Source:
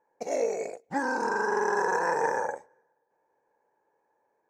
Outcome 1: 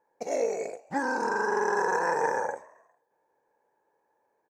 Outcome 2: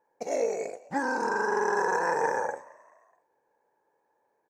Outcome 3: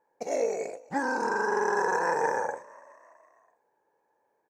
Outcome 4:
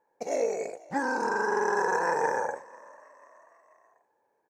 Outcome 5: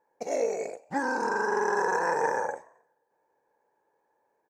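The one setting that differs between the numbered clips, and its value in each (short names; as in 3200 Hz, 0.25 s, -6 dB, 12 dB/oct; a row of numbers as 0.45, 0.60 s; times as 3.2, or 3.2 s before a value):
frequency-shifting echo, time: 135, 214, 331, 490, 89 ms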